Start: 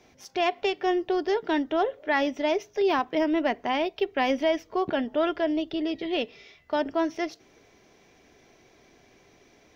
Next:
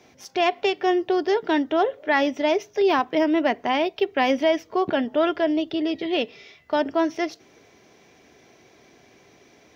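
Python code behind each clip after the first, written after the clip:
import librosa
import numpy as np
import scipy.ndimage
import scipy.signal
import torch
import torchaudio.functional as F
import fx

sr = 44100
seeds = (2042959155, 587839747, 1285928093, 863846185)

y = scipy.signal.sosfilt(scipy.signal.butter(2, 82.0, 'highpass', fs=sr, output='sos'), x)
y = y * librosa.db_to_amplitude(4.0)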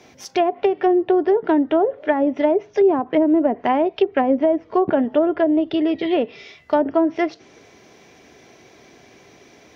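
y = fx.env_lowpass_down(x, sr, base_hz=590.0, full_db=-16.5)
y = y * librosa.db_to_amplitude(5.5)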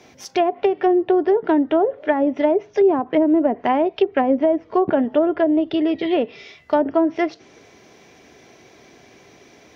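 y = x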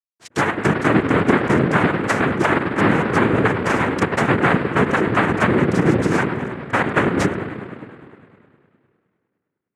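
y = fx.backlash(x, sr, play_db=-31.5)
y = fx.echo_wet_lowpass(y, sr, ms=102, feedback_pct=74, hz=450.0, wet_db=-3.5)
y = fx.noise_vocoder(y, sr, seeds[0], bands=3)
y = y * librosa.db_to_amplitude(-1.0)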